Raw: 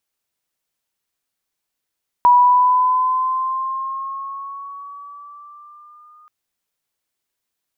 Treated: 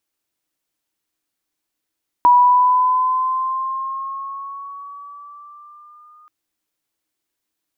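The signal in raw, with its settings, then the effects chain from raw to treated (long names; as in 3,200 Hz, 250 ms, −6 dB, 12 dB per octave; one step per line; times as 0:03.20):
pitch glide with a swell sine, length 4.03 s, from 974 Hz, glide +4 semitones, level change −38 dB, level −7 dB
parametric band 310 Hz +12 dB 0.25 octaves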